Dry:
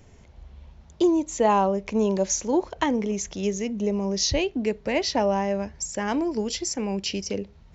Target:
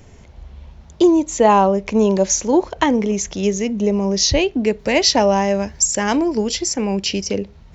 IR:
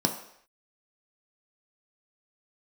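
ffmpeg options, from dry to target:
-filter_complex "[0:a]asettb=1/sr,asplit=3[a][b][c];[a]atrim=end=4.794[d];[b]atrim=start=4.79:end=6.17,asetpts=PTS-STARTPTS,afade=t=in:d=0.004:c=qsin,afade=t=out:st=1.376:d=0.004:c=qsin,highshelf=f=4.6k:g=10.5[e];[c]atrim=start=6.166[f];[d][e]acrossfade=d=0.004:c1=hsin:c2=qsin[g];[g][f]acrossfade=d=0.004:c1=qsin:c2=hsin,volume=7.5dB"

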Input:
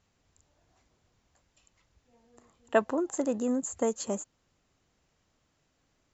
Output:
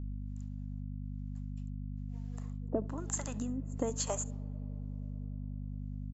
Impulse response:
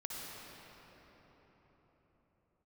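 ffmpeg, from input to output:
-filter_complex "[0:a]agate=range=-33dB:threshold=-60dB:ratio=3:detection=peak,acrossover=split=560[a][b];[a]aeval=exprs='val(0)*(1-1/2+1/2*cos(2*PI*1.1*n/s))':c=same[c];[b]aeval=exprs='val(0)*(1-1/2-1/2*cos(2*PI*1.1*n/s))':c=same[d];[c][d]amix=inputs=2:normalize=0,acompressor=threshold=-38dB:ratio=12,asettb=1/sr,asplit=3[e][f][g];[e]atrim=end=2.814[h];[f]atrim=start=2.81:end=3.76,asetpts=PTS-STARTPTS,afade=t=in:d=0.004:c=qsin,afade=t=out:st=0.946:d=0.004:c=qsin,equalizer=f=480:w=1.2:g=-15[i];[g]atrim=start=3.756[j];[h][i]acrossfade=d=0.004:c1=hsin:c2=qsin[k];[k][j]acrossfade=d=0.004:c1=qsin:c2=hsin,aeval=exprs='val(0)+0.00501*(sin(2*PI*50*n/s)+sin(2*PI*2*50*n/s)/2+sin(2*PI*3*50*n/s)/3+sin(2*PI*4*50*n/s)/4+sin(2*PI*5*50*n/s)/5)':c=same,aecho=1:1:70:0.075,asplit=2[l][m];[1:a]atrim=start_sample=2205,lowpass=2.1k,lowshelf=f=260:g=11[n];[m][n]afir=irnorm=-1:irlink=0,volume=-21dB[o];[l][o]amix=inputs=2:normalize=0,volume=7.5dB"

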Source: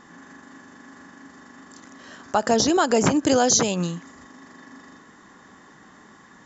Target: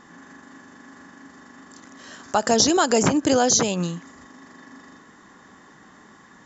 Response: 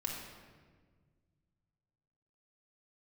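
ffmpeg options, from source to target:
-filter_complex "[0:a]asettb=1/sr,asplit=3[a][b][c];[a]atrim=end=1.974[d];[b]atrim=start=1.97:end=3.03,asetpts=PTS-STARTPTS,afade=t=in:d=0.004:c=qsin,afade=t=out:st=1.056:d=0.004:c=qsin,highshelf=f=4.4k:g=8[e];[c]atrim=start=3.026[f];[d][e]acrossfade=d=0.004:c1=hsin:c2=qsin[g];[g][f]acrossfade=d=0.004:c1=qsin:c2=hsin"

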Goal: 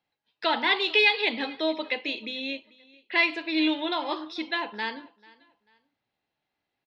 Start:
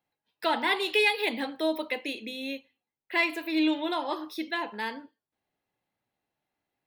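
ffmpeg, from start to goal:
-filter_complex "[0:a]lowpass=f=4.7k:w=0.5412,lowpass=f=4.7k:w=1.3066,highshelf=f=2.6k:g=8.5,asplit=2[a][b];[b]aecho=0:1:441|882:0.0668|0.0201[c];[a][c]amix=inputs=2:normalize=0"

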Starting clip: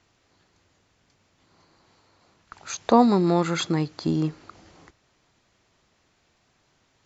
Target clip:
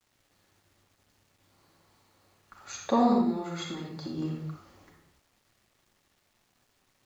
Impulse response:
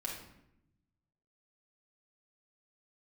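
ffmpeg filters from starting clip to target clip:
-filter_complex "[0:a]asettb=1/sr,asplit=3[a][b][c];[a]atrim=end=3.124[d];[b]atrim=start=3.12:end=4.18,asetpts=PTS-STARTPTS,afade=t=in:d=0.004:c=qsin,afade=t=out:st=1.056:d=0.004:c=qsin,acompressor=threshold=-27dB:ratio=6[e];[c]atrim=start=4.176[f];[d][e]acrossfade=d=0.004:c1=hsin:c2=qsin[g];[g][f]acrossfade=d=0.004:c1=qsin:c2=hsin[h];[1:a]atrim=start_sample=2205,afade=t=out:st=0.27:d=0.01,atrim=end_sample=12348,asetrate=33516,aresample=44100[i];[h][i]afir=irnorm=-1:irlink=0,acrusher=bits=9:mix=0:aa=0.000001,volume=-8dB"

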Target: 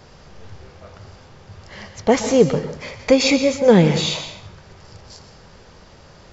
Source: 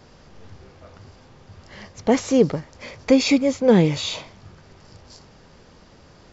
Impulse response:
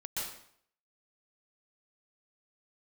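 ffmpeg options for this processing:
-filter_complex "[0:a]equalizer=f=270:w=2.4:g=-6,asplit=2[a][b];[1:a]atrim=start_sample=2205[c];[b][c]afir=irnorm=-1:irlink=0,volume=-10dB[d];[a][d]amix=inputs=2:normalize=0,volume=3dB"

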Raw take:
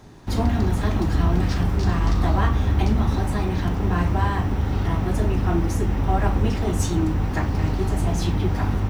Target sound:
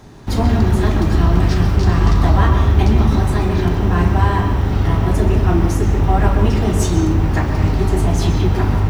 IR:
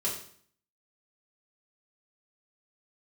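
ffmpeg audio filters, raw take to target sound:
-filter_complex "[0:a]asplit=2[a][b];[1:a]atrim=start_sample=2205,lowpass=5.8k,adelay=123[c];[b][c]afir=irnorm=-1:irlink=0,volume=-11dB[d];[a][d]amix=inputs=2:normalize=0,volume=5dB"

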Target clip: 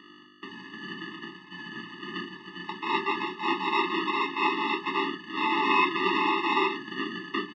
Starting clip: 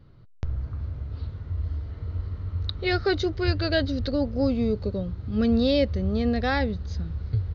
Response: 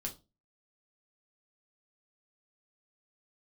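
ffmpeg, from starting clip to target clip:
-filter_complex "[0:a]aecho=1:1:1.5:0.85,aeval=exprs='val(0)+0.0178*(sin(2*PI*50*n/s)+sin(2*PI*2*50*n/s)/2+sin(2*PI*3*50*n/s)/3+sin(2*PI*4*50*n/s)/4+sin(2*PI*5*50*n/s)/5)':c=same,acrossover=split=510[a][b];[a]aeval=exprs='val(0)*(1-0.5/2+0.5/2*cos(2*PI*1*n/s))':c=same[c];[b]aeval=exprs='val(0)*(1-0.5/2-0.5/2*cos(2*PI*1*n/s))':c=same[d];[c][d]amix=inputs=2:normalize=0,acrusher=samples=28:mix=1:aa=0.000001,aeval=exprs='0.282*(cos(1*acos(clip(val(0)/0.282,-1,1)))-cos(1*PI/2))+0.1*(cos(7*acos(clip(val(0)/0.282,-1,1)))-cos(7*PI/2))+0.1*(cos(8*acos(clip(val(0)/0.282,-1,1)))-cos(8*PI/2))':c=same,asoftclip=type=hard:threshold=-11.5dB,highpass=f=390:w=0.5412,highpass=f=390:w=1.3066,equalizer=f=460:t=q:w=4:g=-5,equalizer=f=660:t=q:w=4:g=4,equalizer=f=1.3k:t=q:w=4:g=3,equalizer=f=2.6k:t=q:w=4:g=6,lowpass=f=3.7k:w=0.5412,lowpass=f=3.7k:w=1.3066[e];[1:a]atrim=start_sample=2205[f];[e][f]afir=irnorm=-1:irlink=0,afftfilt=real='re*eq(mod(floor(b*sr/1024/430),2),0)':imag='im*eq(mod(floor(b*sr/1024/430),2),0)':win_size=1024:overlap=0.75,volume=4dB"

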